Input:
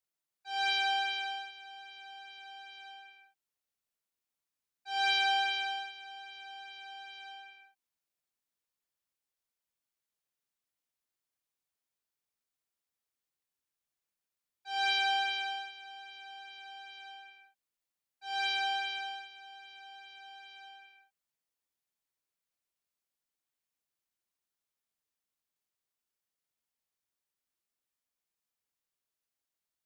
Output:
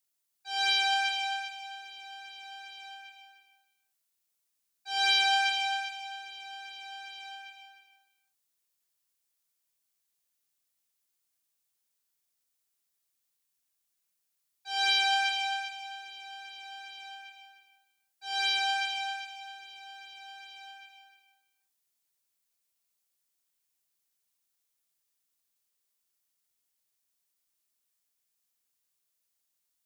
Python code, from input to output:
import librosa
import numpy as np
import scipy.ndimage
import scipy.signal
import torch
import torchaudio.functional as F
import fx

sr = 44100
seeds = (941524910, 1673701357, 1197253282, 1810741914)

p1 = fx.high_shelf(x, sr, hz=3500.0, db=11.0)
y = p1 + fx.echo_feedback(p1, sr, ms=305, feedback_pct=16, wet_db=-9, dry=0)